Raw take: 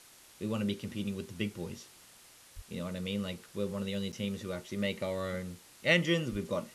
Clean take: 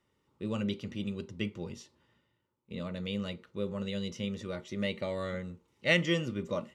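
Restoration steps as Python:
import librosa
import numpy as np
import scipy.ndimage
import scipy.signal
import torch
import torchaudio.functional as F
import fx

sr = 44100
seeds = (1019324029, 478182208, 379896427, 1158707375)

y = fx.fix_declick_ar(x, sr, threshold=6.5)
y = fx.highpass(y, sr, hz=140.0, slope=24, at=(2.55, 2.67), fade=0.02)
y = fx.highpass(y, sr, hz=140.0, slope=24, at=(6.31, 6.43), fade=0.02)
y = fx.fix_interpolate(y, sr, at_s=(4.12,), length_ms=7.9)
y = fx.noise_reduce(y, sr, print_start_s=2.06, print_end_s=2.56, reduce_db=17.0)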